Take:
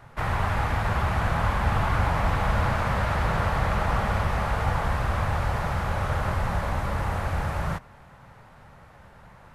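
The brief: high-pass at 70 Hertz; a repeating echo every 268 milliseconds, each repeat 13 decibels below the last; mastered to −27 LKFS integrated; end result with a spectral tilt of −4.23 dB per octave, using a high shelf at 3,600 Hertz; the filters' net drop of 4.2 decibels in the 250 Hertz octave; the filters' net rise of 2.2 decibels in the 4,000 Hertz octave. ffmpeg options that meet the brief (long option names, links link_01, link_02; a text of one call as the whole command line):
ffmpeg -i in.wav -af "highpass=70,equalizer=frequency=250:width_type=o:gain=-7,highshelf=frequency=3600:gain=-8,equalizer=frequency=4000:width_type=o:gain=8,aecho=1:1:268|536|804:0.224|0.0493|0.0108,volume=0.5dB" out.wav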